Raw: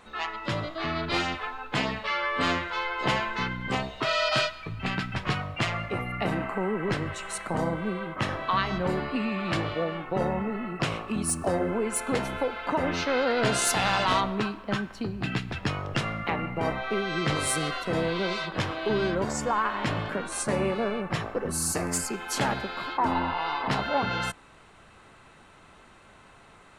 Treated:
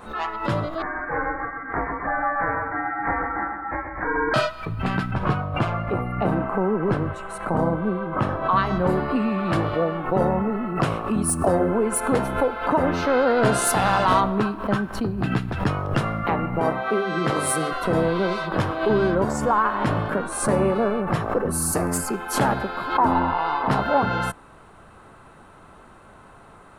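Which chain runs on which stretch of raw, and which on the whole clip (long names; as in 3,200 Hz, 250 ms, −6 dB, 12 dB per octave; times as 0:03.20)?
0:00.82–0:04.34: high-pass filter 940 Hz 24 dB per octave + voice inversion scrambler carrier 2,900 Hz + repeating echo 129 ms, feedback 39%, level −6.5 dB
0:05.11–0:08.56: high-shelf EQ 3,400 Hz −10.5 dB + notch filter 1,900 Hz, Q 11
0:16.60–0:17.73: high-pass filter 130 Hz + mains-hum notches 50/100/150/200/250/300/350 Hz
whole clip: flat-topped bell 3,800 Hz −9.5 dB 2.3 octaves; background raised ahead of every attack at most 110 dB per second; level +6.5 dB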